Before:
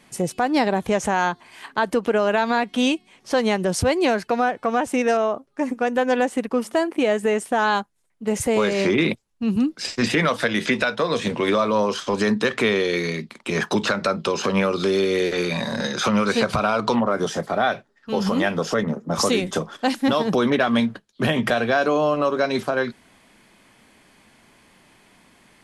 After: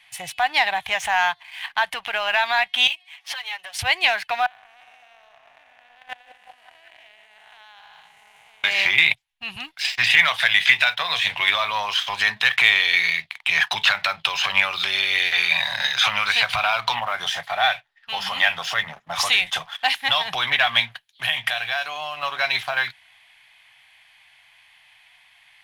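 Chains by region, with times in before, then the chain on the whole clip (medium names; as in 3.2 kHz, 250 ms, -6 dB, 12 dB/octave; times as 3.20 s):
2.87–3.79 s: compression 16:1, threshold -29 dBFS + high-pass 530 Hz + comb 7.1 ms, depth 98%
4.46–8.64 s: spectral blur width 424 ms + level held to a coarse grid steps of 23 dB + repeats whose band climbs or falls 187 ms, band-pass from 410 Hz, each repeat 0.7 oct, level -3.5 dB
20.92–22.23 s: compression 1.5:1, threshold -36 dBFS + treble shelf 7.3 kHz +11.5 dB
whole clip: peaking EQ 2.3 kHz +10.5 dB 2.8 oct; waveshaping leveller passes 1; FFT filter 130 Hz 0 dB, 220 Hz -20 dB, 490 Hz -16 dB, 740 Hz +7 dB, 1.3 kHz 0 dB, 1.9 kHz +9 dB, 3.4 kHz +12 dB, 4.9 kHz +4 dB, 7.8 kHz +2 dB, 11 kHz +10 dB; trim -13 dB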